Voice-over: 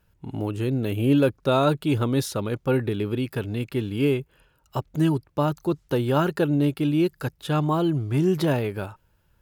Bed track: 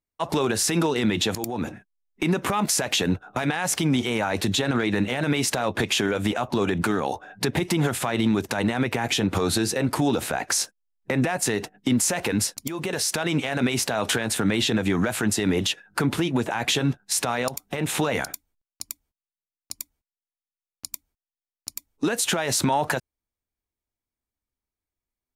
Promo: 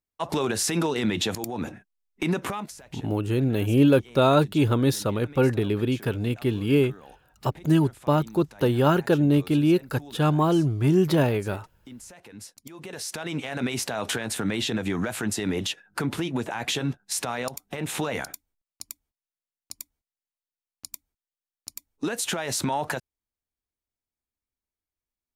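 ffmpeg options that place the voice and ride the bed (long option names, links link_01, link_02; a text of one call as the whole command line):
ffmpeg -i stem1.wav -i stem2.wav -filter_complex "[0:a]adelay=2700,volume=1.5dB[link_01];[1:a]volume=15.5dB,afade=type=out:start_time=2.38:duration=0.35:silence=0.1,afade=type=in:start_time=12.31:duration=1.39:silence=0.125893[link_02];[link_01][link_02]amix=inputs=2:normalize=0" out.wav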